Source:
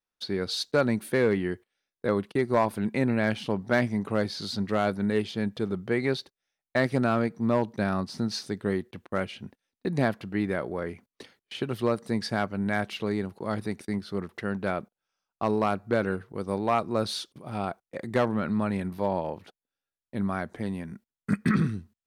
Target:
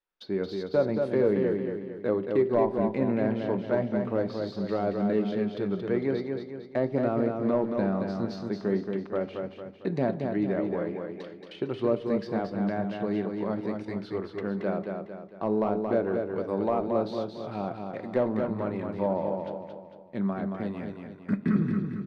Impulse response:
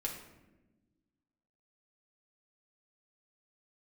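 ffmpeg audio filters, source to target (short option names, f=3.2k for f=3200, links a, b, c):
-filter_complex "[0:a]lowpass=6.7k,equalizer=f=63:w=0.45:g=-8.5,acrossover=split=800[a][b];[b]acompressor=threshold=-45dB:ratio=6[c];[a][c]amix=inputs=2:normalize=0,flanger=delay=2.2:depth=4.6:regen=-73:speed=0.43:shape=sinusoidal,adynamicsmooth=sensitivity=6:basefreq=4.5k,aecho=1:1:226|452|678|904|1130|1356:0.562|0.253|0.114|0.0512|0.0231|0.0104,asplit=2[d][e];[1:a]atrim=start_sample=2205,asetrate=83790,aresample=44100[f];[e][f]afir=irnorm=-1:irlink=0,volume=-4.5dB[g];[d][g]amix=inputs=2:normalize=0,volume=4dB"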